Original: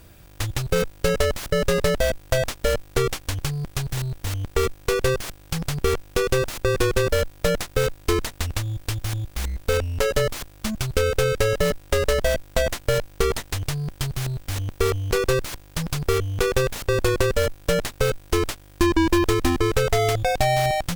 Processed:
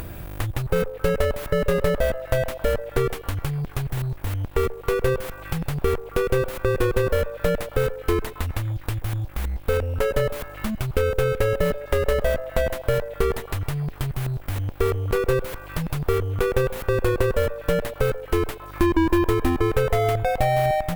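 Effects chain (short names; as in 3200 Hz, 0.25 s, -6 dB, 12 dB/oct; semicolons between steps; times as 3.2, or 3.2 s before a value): bell 5800 Hz -12.5 dB 1.8 oct; delay with a stepping band-pass 0.135 s, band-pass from 660 Hz, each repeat 0.7 oct, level -10.5 dB; upward compressor, threshold -22 dBFS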